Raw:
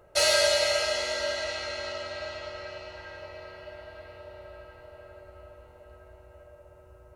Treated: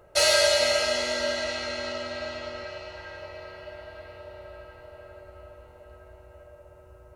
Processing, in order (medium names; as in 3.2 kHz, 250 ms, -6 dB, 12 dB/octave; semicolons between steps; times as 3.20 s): 0.59–2.64 s: peaking EQ 250 Hz +12 dB 0.48 oct; trim +2 dB